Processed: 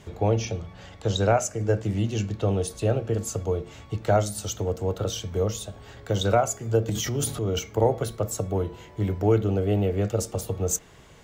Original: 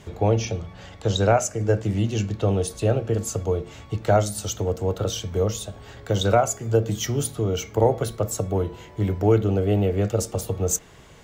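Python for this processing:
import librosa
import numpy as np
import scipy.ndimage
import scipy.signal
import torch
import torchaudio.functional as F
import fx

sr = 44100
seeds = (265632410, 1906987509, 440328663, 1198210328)

y = fx.transient(x, sr, attack_db=-3, sustain_db=8, at=(6.88, 7.59))
y = y * librosa.db_to_amplitude(-2.5)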